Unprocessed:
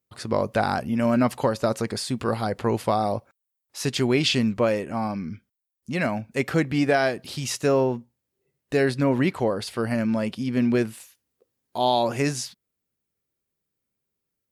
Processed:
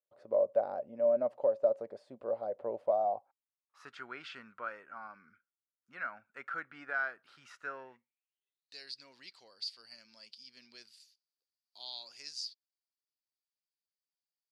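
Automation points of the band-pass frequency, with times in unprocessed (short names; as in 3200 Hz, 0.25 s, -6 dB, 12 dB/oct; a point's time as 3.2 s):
band-pass, Q 9.1
2.85 s 580 Hz
3.96 s 1400 Hz
7.64 s 1400 Hz
8.78 s 4700 Hz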